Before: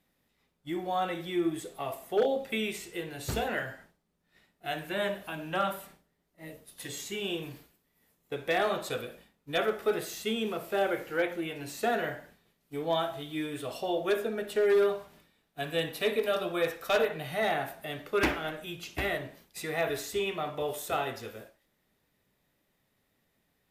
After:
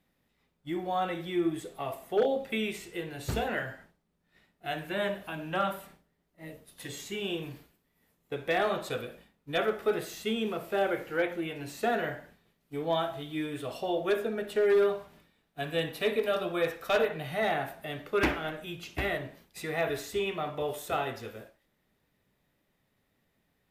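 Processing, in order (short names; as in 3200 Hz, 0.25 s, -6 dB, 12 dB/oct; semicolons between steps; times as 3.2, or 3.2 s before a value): tone controls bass +2 dB, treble -4 dB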